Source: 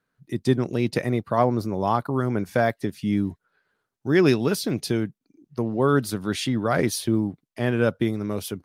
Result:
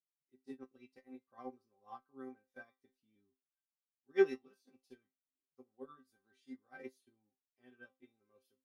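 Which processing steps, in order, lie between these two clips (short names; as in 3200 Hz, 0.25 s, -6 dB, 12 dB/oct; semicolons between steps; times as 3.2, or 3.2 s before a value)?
repeated pitch sweeps +1 st, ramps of 0.631 s; tone controls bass -4 dB, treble -2 dB; resonator bank C4 fifth, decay 0.23 s; upward expander 2.5:1, over -46 dBFS; gain +3.5 dB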